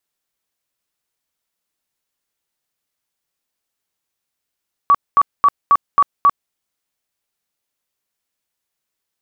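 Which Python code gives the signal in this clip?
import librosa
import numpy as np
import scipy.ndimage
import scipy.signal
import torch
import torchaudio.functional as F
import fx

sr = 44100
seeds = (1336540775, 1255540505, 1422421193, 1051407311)

y = fx.tone_burst(sr, hz=1140.0, cycles=52, every_s=0.27, bursts=6, level_db=-7.0)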